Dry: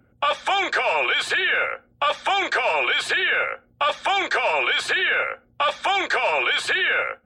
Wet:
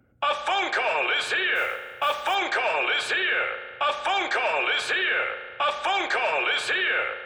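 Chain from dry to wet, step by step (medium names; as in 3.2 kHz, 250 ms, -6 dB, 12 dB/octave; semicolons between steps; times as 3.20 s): spring tank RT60 1.7 s, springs 35 ms, chirp 40 ms, DRR 8 dB; 1.55–2.35 s: modulation noise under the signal 26 dB; trim -3.5 dB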